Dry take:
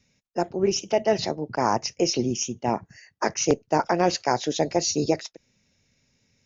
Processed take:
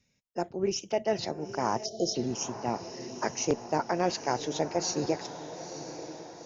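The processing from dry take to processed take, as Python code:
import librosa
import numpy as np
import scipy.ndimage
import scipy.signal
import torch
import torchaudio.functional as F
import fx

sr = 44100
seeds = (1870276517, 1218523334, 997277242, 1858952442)

y = fx.echo_diffused(x, sr, ms=930, feedback_pct=50, wet_db=-11)
y = fx.spec_erase(y, sr, start_s=1.85, length_s=0.3, low_hz=810.0, high_hz=3000.0)
y = y * 10.0 ** (-6.5 / 20.0)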